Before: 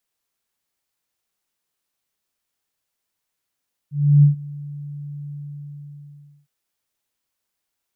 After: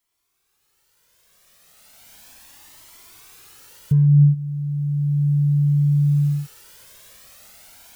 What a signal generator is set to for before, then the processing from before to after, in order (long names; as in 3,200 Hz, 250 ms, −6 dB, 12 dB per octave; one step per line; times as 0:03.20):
note with an ADSR envelope sine 145 Hz, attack 319 ms, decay 122 ms, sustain −22.5 dB, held 1.41 s, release 1,150 ms −7 dBFS
camcorder AGC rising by 14 dB per second
in parallel at +2 dB: brickwall limiter −16 dBFS
on the sum: flanger whose copies keep moving one way rising 0.35 Hz